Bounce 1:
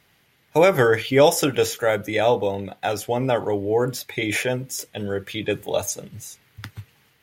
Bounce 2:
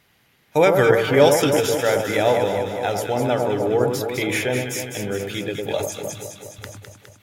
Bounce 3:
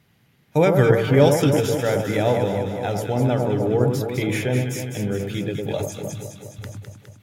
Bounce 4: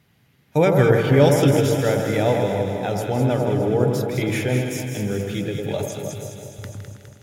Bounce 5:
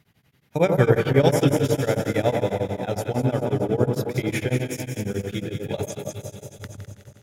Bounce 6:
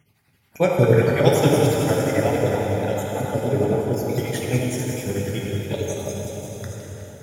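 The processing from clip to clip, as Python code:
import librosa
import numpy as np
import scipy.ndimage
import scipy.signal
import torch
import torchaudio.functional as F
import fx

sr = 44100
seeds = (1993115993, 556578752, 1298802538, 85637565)

y1 = fx.echo_alternate(x, sr, ms=103, hz=1200.0, feedback_pct=79, wet_db=-4)
y1 = fx.end_taper(y1, sr, db_per_s=100.0)
y2 = fx.peak_eq(y1, sr, hz=140.0, db=12.5, octaves=2.2)
y2 = y2 * 10.0 ** (-5.0 / 20.0)
y3 = fx.echo_feedback(y2, sr, ms=162, feedback_pct=58, wet_db=-9.5)
y4 = y3 * np.abs(np.cos(np.pi * 11.0 * np.arange(len(y3)) / sr))
y5 = fx.spec_dropout(y4, sr, seeds[0], share_pct=38)
y5 = fx.high_shelf(y5, sr, hz=6700.0, db=5.0)
y5 = fx.rev_plate(y5, sr, seeds[1], rt60_s=4.2, hf_ratio=0.75, predelay_ms=0, drr_db=-1.5)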